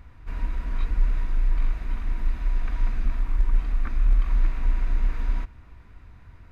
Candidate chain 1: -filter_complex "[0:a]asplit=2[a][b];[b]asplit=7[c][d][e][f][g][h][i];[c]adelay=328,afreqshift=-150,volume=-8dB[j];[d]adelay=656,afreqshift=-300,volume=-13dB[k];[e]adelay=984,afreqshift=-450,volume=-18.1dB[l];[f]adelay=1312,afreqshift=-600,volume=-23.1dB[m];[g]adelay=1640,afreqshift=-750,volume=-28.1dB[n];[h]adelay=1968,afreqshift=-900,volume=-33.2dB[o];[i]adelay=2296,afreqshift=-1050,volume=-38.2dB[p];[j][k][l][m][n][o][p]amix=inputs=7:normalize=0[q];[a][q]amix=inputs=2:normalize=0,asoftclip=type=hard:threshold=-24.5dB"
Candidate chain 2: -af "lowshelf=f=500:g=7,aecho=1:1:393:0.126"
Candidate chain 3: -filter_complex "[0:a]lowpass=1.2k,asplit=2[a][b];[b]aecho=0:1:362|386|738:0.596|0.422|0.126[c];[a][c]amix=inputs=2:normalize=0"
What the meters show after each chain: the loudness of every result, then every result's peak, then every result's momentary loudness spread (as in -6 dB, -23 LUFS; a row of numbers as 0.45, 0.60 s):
-32.0, -22.0, -27.0 LUFS; -24.5, -3.0, -7.5 dBFS; 4, 8, 10 LU